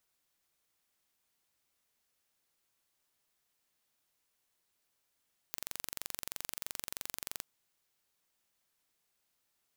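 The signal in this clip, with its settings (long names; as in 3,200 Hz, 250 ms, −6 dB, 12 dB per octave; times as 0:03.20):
impulse train 23.1 per second, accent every 0, −11 dBFS 1.87 s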